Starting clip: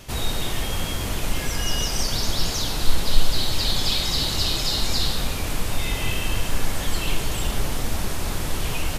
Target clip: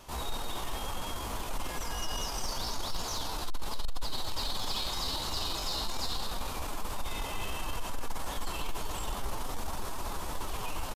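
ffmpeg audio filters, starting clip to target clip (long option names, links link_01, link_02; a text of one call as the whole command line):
ffmpeg -i in.wav -af "equalizer=frequency=125:width_type=o:width=1:gain=-7,equalizer=frequency=1000:width_type=o:width=1:gain=10,equalizer=frequency=2000:width_type=o:width=1:gain=-4,asoftclip=type=tanh:threshold=-15dB,atempo=0.82,volume=-9dB" out.wav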